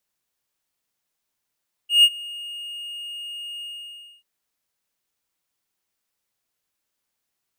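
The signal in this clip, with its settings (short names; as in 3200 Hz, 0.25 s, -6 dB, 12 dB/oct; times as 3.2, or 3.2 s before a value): ADSR triangle 2850 Hz, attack 0.146 s, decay 52 ms, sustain -23 dB, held 1.73 s, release 0.609 s -6.5 dBFS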